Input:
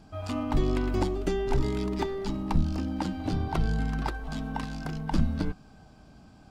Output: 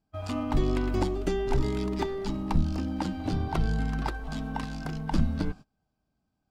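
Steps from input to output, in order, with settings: gate -40 dBFS, range -26 dB

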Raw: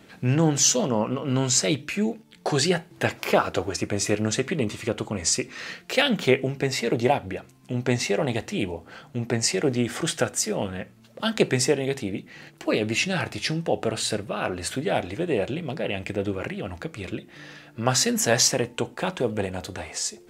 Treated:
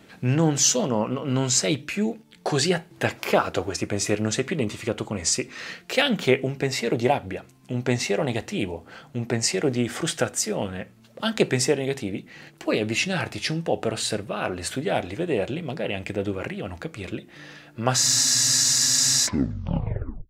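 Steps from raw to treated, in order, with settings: tape stop on the ending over 1.61 s; spectral freeze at 18.00 s, 1.25 s

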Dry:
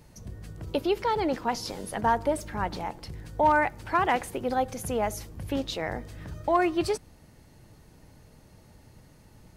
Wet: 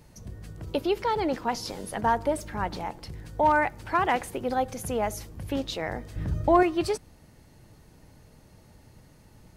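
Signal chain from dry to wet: 6.16–6.63 s: bass shelf 430 Hz +11.5 dB

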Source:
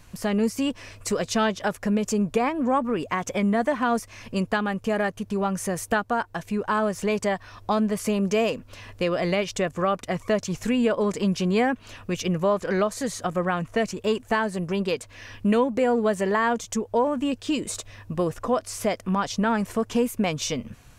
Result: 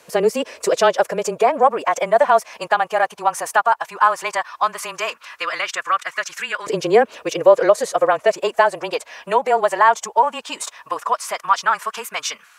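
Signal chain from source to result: time stretch by phase-locked vocoder 0.6×; LFO high-pass saw up 0.15 Hz 470–1600 Hz; frequency shift -22 Hz; trim +6.5 dB

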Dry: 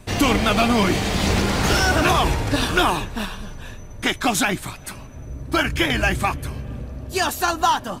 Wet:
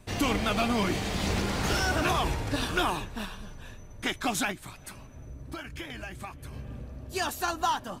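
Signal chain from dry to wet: 4.51–6.53 s: compression 6:1, threshold -28 dBFS, peak gain reduction 12.5 dB; trim -9 dB

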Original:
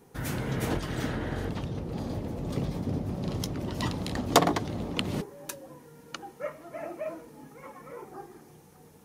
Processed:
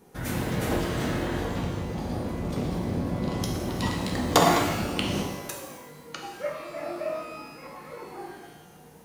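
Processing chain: pitch-shifted reverb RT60 1.1 s, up +12 st, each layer -8 dB, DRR -0.5 dB

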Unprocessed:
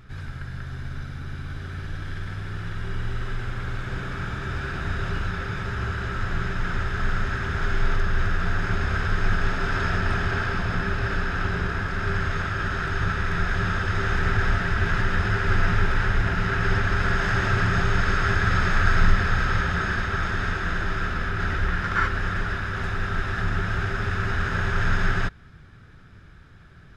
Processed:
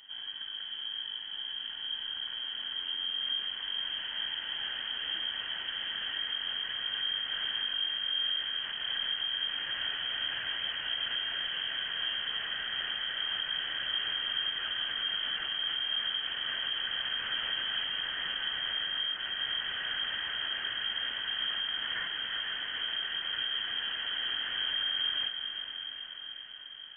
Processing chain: compression, threshold -22 dBFS, peak gain reduction 11 dB; saturation -21.5 dBFS, distortion -17 dB; echo that smears into a reverb 452 ms, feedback 66%, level -8 dB; frequency inversion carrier 3.2 kHz; trim -8 dB

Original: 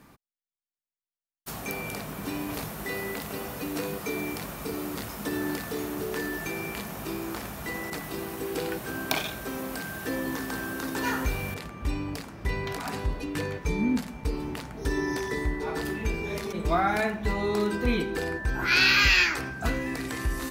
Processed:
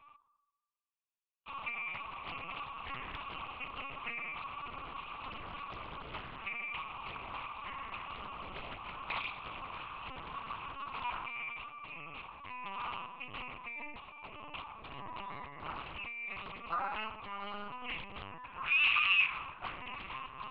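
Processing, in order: compression 2:1, threshold -33 dBFS, peak gain reduction 9 dB; two resonant band-passes 1.7 kHz, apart 1.2 oct; on a send at -10 dB: reverberation RT60 1.1 s, pre-delay 3 ms; on the sum: LPC vocoder at 8 kHz pitch kept; loudspeaker Doppler distortion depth 0.71 ms; trim +6 dB

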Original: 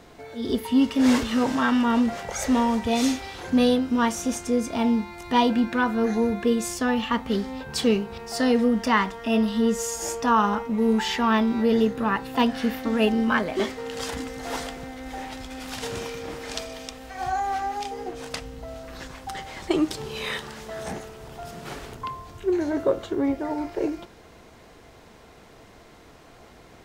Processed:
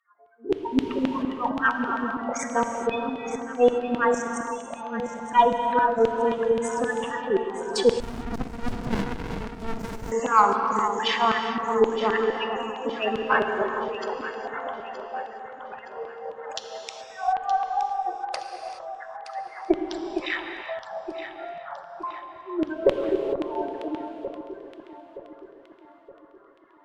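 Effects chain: local Wiener filter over 15 samples; spectral gate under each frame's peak -20 dB strong; spectral noise reduction 25 dB; LFO high-pass saw down 3.8 Hz 330–3100 Hz; Chebyshev shaper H 4 -29 dB, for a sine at -5 dBFS; echo whose repeats swap between lows and highs 460 ms, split 1.2 kHz, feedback 66%, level -7.5 dB; gated-style reverb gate 450 ms flat, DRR 4.5 dB; 8.00–10.12 s: sliding maximum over 65 samples

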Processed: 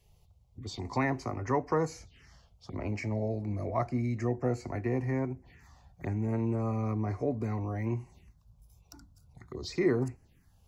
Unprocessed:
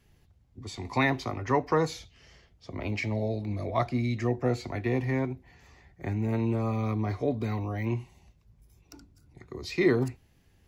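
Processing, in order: in parallel at -1.5 dB: compression, threshold -35 dBFS, peak gain reduction 16 dB; on the sum: touch-sensitive phaser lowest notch 240 Hz, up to 3.5 kHz, full sweep at -29.5 dBFS; trim -4.5 dB

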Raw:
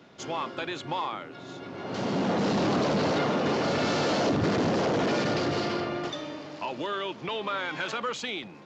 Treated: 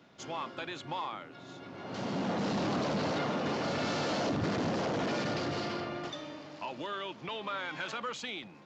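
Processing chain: peaking EQ 410 Hz -3.5 dB 0.6 oct; trim -5.5 dB

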